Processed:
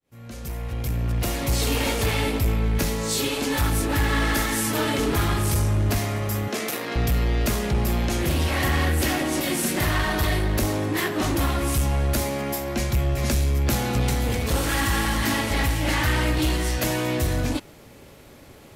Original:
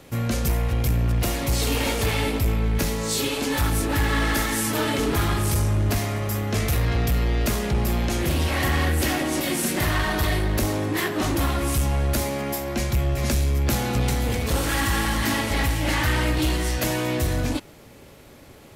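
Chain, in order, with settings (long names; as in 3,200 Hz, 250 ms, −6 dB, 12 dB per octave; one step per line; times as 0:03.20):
fade in at the beginning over 1.51 s
0:06.48–0:06.96: high-pass filter 230 Hz 24 dB per octave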